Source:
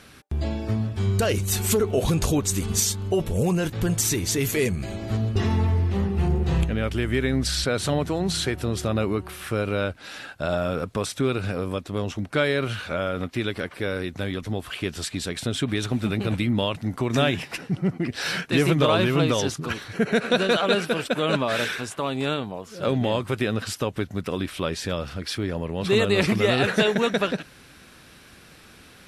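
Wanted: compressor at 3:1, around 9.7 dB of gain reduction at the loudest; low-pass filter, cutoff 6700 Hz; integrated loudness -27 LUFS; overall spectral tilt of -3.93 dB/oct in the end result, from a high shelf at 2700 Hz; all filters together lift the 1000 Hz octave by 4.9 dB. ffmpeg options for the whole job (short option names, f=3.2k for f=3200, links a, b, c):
-af "lowpass=6.7k,equalizer=f=1k:t=o:g=5,highshelf=f=2.7k:g=9,acompressor=threshold=-27dB:ratio=3,volume=2.5dB"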